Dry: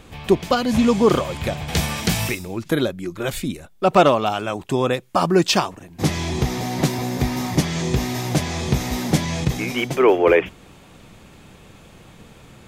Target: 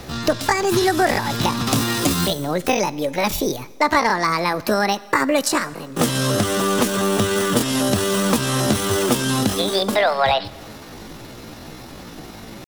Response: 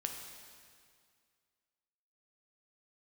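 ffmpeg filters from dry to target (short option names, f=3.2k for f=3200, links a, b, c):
-filter_complex "[0:a]asetrate=70004,aresample=44100,atempo=0.629961,acrossover=split=140|1300[a][b][c];[a]acompressor=threshold=-37dB:ratio=4[d];[b]acompressor=threshold=-28dB:ratio=4[e];[c]acompressor=threshold=-31dB:ratio=4[f];[d][e][f]amix=inputs=3:normalize=0,asplit=2[g][h];[1:a]atrim=start_sample=2205,asetrate=61740,aresample=44100[i];[h][i]afir=irnorm=-1:irlink=0,volume=-9dB[j];[g][j]amix=inputs=2:normalize=0,volume=7dB"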